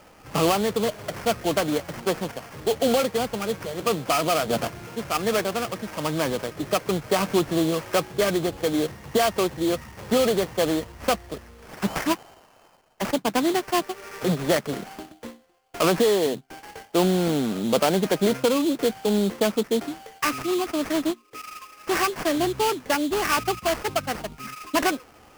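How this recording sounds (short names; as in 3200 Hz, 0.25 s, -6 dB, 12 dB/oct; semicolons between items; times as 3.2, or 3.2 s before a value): aliases and images of a low sample rate 3800 Hz, jitter 20%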